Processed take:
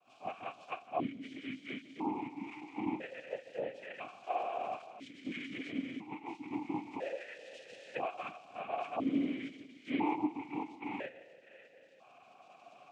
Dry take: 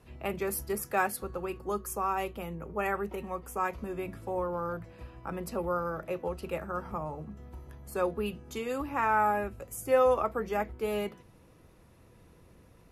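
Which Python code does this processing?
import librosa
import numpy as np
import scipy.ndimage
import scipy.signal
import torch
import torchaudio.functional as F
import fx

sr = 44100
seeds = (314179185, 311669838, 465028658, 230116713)

y = fx.octave_mirror(x, sr, pivot_hz=610.0)
y = fx.recorder_agc(y, sr, target_db=-21.5, rise_db_per_s=6.5, max_gain_db=30)
y = fx.dynamic_eq(y, sr, hz=870.0, q=0.84, threshold_db=-43.0, ratio=4.0, max_db=-5)
y = fx.echo_split(y, sr, split_hz=940.0, low_ms=159, high_ms=603, feedback_pct=52, wet_db=-15.0)
y = fx.noise_vocoder(y, sr, seeds[0], bands=4)
y = fx.vowel_held(y, sr, hz=1.0)
y = y * 10.0 ** (6.0 / 20.0)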